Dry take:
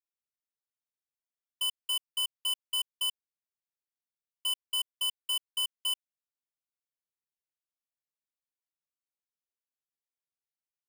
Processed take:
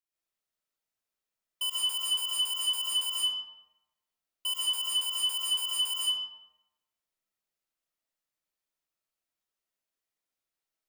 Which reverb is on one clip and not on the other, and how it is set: digital reverb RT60 1 s, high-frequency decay 0.65×, pre-delay 80 ms, DRR -7 dB; gain -1 dB

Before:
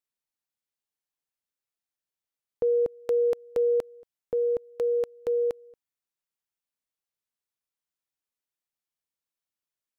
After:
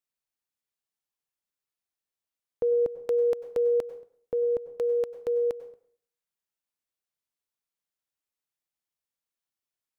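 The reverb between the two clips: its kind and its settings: plate-style reverb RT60 0.51 s, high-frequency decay 0.75×, pre-delay 85 ms, DRR 13.5 dB; gain -1 dB

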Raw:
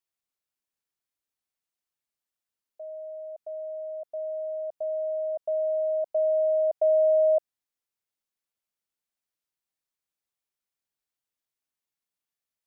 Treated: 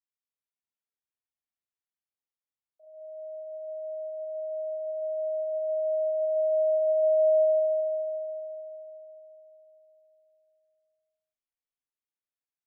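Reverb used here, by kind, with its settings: spring tank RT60 3.8 s, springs 35/53 ms, chirp 75 ms, DRR -9.5 dB; gain -19 dB

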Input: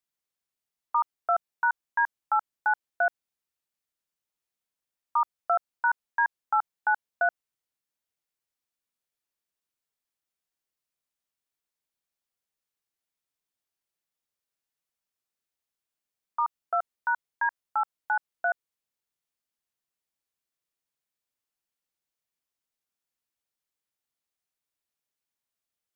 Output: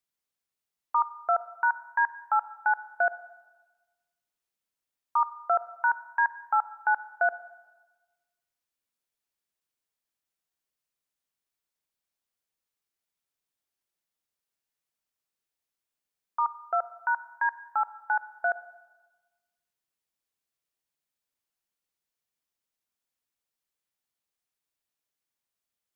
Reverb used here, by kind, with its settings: Schroeder reverb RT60 1.2 s, combs from 32 ms, DRR 15 dB

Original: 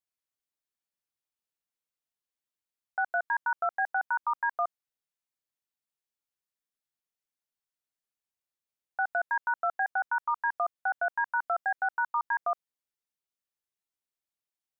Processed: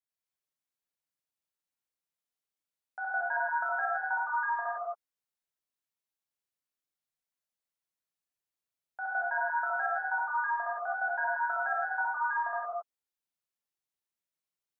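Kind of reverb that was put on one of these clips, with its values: non-linear reverb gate 0.3 s flat, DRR -7.5 dB; gain -9.5 dB

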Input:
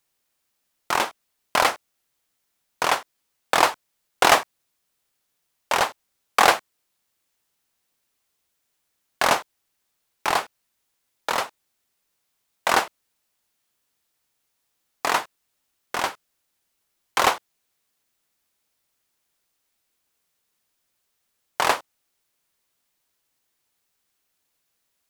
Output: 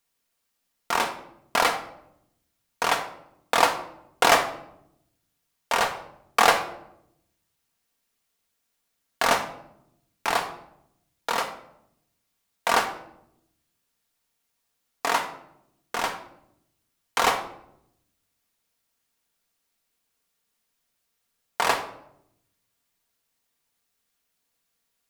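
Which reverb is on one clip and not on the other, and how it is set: shoebox room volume 1900 m³, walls furnished, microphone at 1.7 m; gain -3 dB

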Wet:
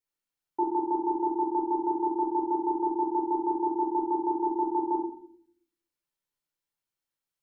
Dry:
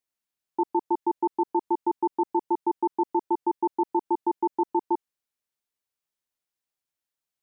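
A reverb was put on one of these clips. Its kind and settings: shoebox room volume 810 m³, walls furnished, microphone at 4.4 m; gain -7 dB

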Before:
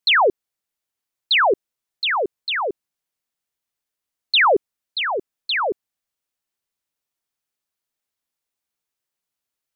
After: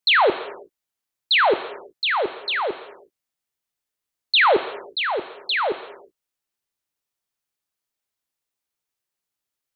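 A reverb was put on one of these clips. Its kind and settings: non-linear reverb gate 0.4 s falling, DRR 10.5 dB; gain -1 dB

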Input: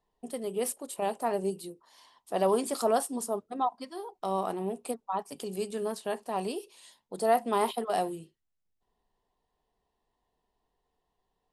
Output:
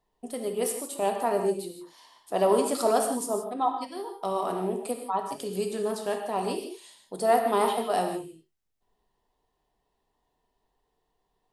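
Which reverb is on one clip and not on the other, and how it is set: non-linear reverb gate 0.19 s flat, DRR 3.5 dB; gain +2 dB

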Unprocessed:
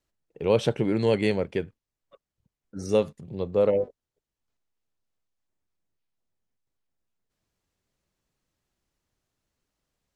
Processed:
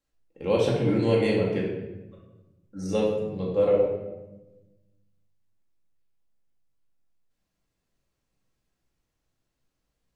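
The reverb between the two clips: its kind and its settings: shoebox room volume 510 m³, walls mixed, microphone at 2.2 m; gain -5.5 dB

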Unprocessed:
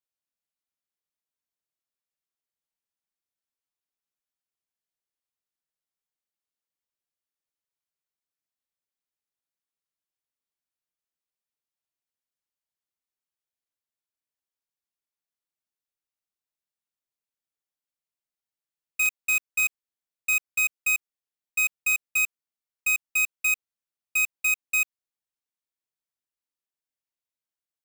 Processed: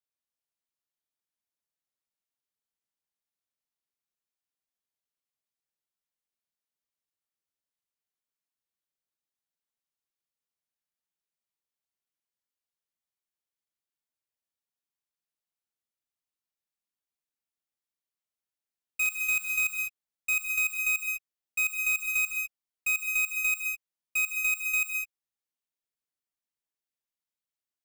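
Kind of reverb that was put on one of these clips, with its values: non-linear reverb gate 0.23 s rising, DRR 3 dB; gain -4.5 dB

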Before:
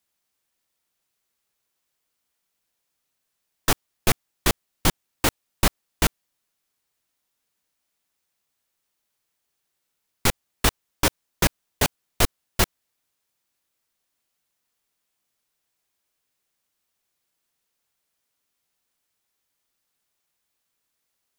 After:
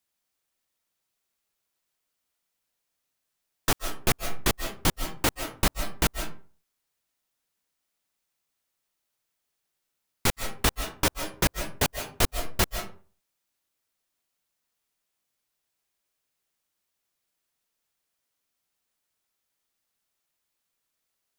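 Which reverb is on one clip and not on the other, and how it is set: digital reverb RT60 0.41 s, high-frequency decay 0.6×, pre-delay 0.115 s, DRR 7.5 dB; gain -3.5 dB

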